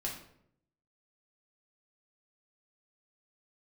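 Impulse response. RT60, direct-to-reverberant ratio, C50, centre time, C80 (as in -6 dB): 0.70 s, -3.0 dB, 6.0 dB, 31 ms, 9.5 dB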